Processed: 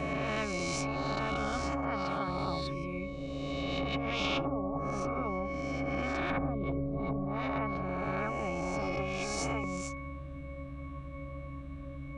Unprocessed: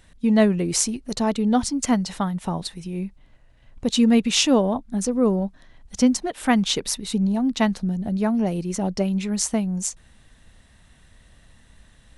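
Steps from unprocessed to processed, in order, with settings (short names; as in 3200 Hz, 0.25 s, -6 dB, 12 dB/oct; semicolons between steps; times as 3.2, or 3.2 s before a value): spectral swells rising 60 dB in 1.67 s; 1.75–2.28 Bessel high-pass 290 Hz, order 2; 6.3–7.25 tilt -3 dB/oct; octave resonator C#, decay 0.75 s; treble ducked by the level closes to 390 Hz, closed at -31.5 dBFS; 8.82–9.64 comb 2.4 ms; spectral compressor 4:1; gain +4 dB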